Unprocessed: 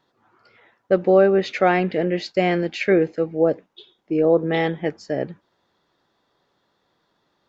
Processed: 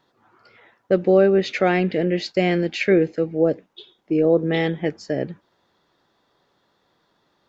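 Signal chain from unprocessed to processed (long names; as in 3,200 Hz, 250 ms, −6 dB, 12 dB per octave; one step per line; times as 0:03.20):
dynamic equaliser 970 Hz, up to −8 dB, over −32 dBFS, Q 0.86
level +2.5 dB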